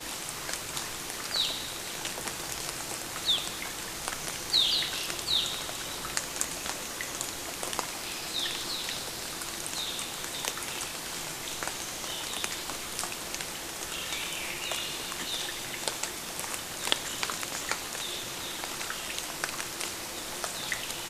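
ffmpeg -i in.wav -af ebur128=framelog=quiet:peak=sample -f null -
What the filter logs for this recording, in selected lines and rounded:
Integrated loudness:
  I:         -31.8 LUFS
  Threshold: -41.8 LUFS
Loudness range:
  LRA:         4.9 LU
  Threshold: -51.6 LUFS
  LRA low:   -33.4 LUFS
  LRA high:  -28.5 LUFS
Sample peak:
  Peak:       -4.6 dBFS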